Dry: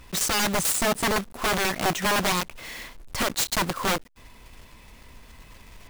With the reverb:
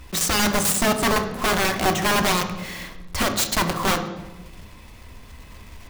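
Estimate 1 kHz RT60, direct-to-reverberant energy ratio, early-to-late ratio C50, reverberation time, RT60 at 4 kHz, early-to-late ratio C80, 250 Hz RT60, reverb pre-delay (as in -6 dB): 1.0 s, 6.0 dB, 9.0 dB, 1.1 s, 0.80 s, 11.5 dB, 1.4 s, 3 ms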